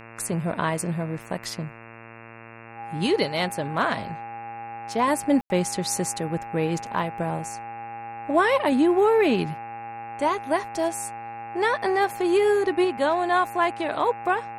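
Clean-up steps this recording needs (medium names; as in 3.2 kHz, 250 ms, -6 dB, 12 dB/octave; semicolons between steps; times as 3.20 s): de-hum 114.6 Hz, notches 24; band-stop 810 Hz, Q 30; room tone fill 5.41–5.50 s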